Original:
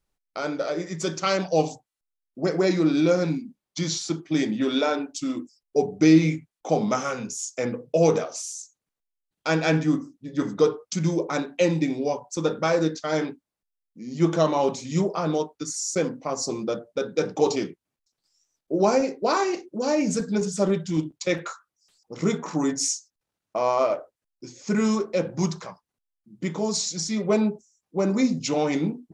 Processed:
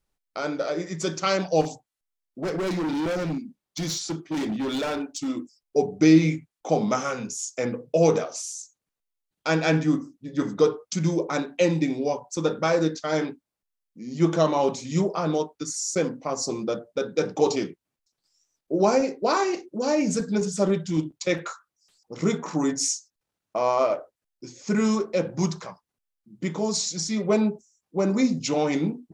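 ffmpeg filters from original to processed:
-filter_complex "[0:a]asettb=1/sr,asplit=3[s0][s1][s2];[s0]atrim=end=1.614[s3];[s1]atrim=start=1.61:end=5.28,asetpts=PTS-STARTPTS,afade=t=in:d=0.004:c=qsin,afade=t=out:st=3.666:d=0.004:c=qsin,asoftclip=type=hard:threshold=0.0596[s4];[s2]atrim=start=5.276[s5];[s3][s4]acrossfade=d=0.004:c1=hsin:c2=qsin[s6];[s6][s5]acrossfade=d=0.004:c1=qsin:c2=hsin"

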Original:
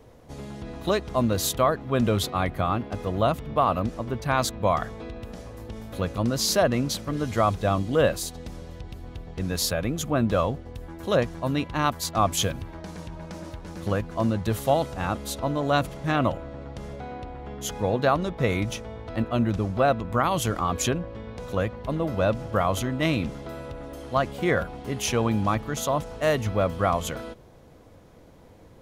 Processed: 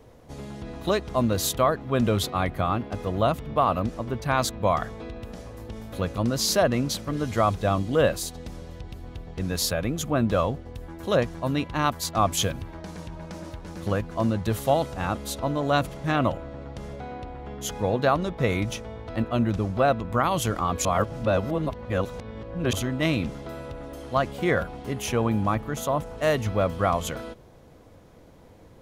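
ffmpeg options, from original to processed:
-filter_complex "[0:a]asettb=1/sr,asplit=3[s0][s1][s2];[s0]atrim=end=24.934[s3];[s1]atrim=start=24.93:end=26.18,asetpts=PTS-STARTPTS,afade=t=in:d=0.004:c=qsin,afade=t=out:st=1.246:d=0.004:c=qsin,equalizer=f=4800:w=0.73:g=-6[s4];[s2]atrim=start=26.176[s5];[s3][s4]acrossfade=d=0.004:c1=hsin:c2=qsin[s6];[s6][s5]acrossfade=d=0.004:c1=qsin:c2=hsin,asplit=3[s7][s8][s9];[s7]atrim=end=20.852[s10];[s8]atrim=start=20.848:end=22.732,asetpts=PTS-STARTPTS,areverse[s11];[s9]atrim=start=22.728[s12];[s10][s11]acrossfade=d=0.004:c1=hsin:c2=hsin[s13];[s13][s12]acrossfade=d=0.004:c1=hsin:c2=hsin"

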